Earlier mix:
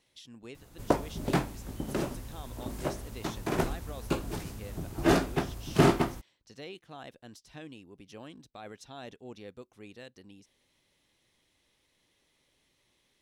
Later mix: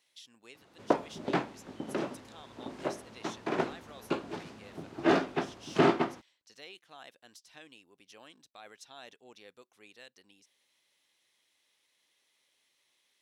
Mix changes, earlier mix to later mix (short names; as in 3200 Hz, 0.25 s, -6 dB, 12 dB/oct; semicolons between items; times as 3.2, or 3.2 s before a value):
speech: add HPF 1200 Hz 6 dB/oct; background: add BPF 240–3800 Hz